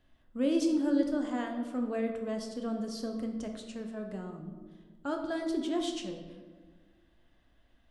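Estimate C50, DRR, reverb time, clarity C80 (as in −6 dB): 6.0 dB, 3.0 dB, 1.5 s, 8.0 dB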